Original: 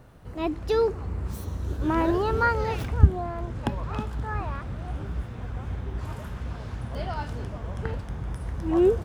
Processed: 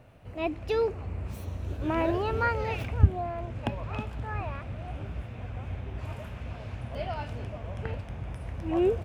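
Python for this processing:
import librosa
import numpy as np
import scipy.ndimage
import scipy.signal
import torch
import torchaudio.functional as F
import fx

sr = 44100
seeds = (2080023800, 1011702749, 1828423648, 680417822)

y = fx.graphic_eq_15(x, sr, hz=(100, 250, 630, 2500), db=(7, 3, 9, 12))
y = y * 10.0 ** (-7.5 / 20.0)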